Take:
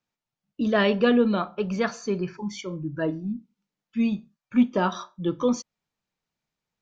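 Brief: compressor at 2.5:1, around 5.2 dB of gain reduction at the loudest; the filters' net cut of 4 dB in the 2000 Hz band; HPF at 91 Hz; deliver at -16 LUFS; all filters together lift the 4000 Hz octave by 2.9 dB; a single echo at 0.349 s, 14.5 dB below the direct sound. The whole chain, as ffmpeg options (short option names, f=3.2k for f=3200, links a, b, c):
-af "highpass=91,equalizer=f=2k:t=o:g=-6.5,equalizer=f=4k:t=o:g=7,acompressor=threshold=-22dB:ratio=2.5,aecho=1:1:349:0.188,volume=12.5dB"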